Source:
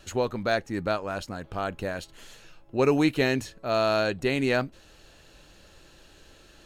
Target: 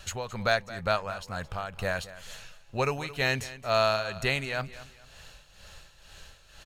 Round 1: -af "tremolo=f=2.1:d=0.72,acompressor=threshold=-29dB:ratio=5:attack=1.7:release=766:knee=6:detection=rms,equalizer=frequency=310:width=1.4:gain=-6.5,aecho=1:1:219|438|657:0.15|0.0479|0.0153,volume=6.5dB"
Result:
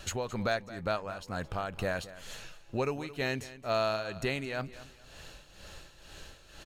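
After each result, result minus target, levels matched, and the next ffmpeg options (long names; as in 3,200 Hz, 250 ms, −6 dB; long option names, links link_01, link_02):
downward compressor: peak gain reduction +8.5 dB; 250 Hz band +6.0 dB
-af "tremolo=f=2.1:d=0.72,acompressor=threshold=-18.5dB:ratio=5:attack=1.7:release=766:knee=6:detection=rms,equalizer=frequency=310:width=1.4:gain=-6.5,aecho=1:1:219|438|657:0.15|0.0479|0.0153,volume=6.5dB"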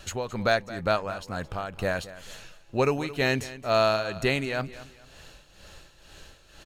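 250 Hz band +5.0 dB
-af "tremolo=f=2.1:d=0.72,acompressor=threshold=-18.5dB:ratio=5:attack=1.7:release=766:knee=6:detection=rms,equalizer=frequency=310:width=1.4:gain=-18,aecho=1:1:219|438|657:0.15|0.0479|0.0153,volume=6.5dB"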